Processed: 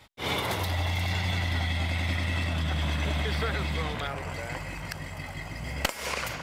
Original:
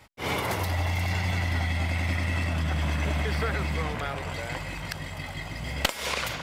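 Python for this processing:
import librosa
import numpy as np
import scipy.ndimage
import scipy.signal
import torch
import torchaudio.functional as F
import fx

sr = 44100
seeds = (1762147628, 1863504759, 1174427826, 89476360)

y = fx.peak_eq(x, sr, hz=3600.0, db=fx.steps((0.0, 8.5), (4.07, -7.0)), octaves=0.36)
y = y * librosa.db_to_amplitude(-1.5)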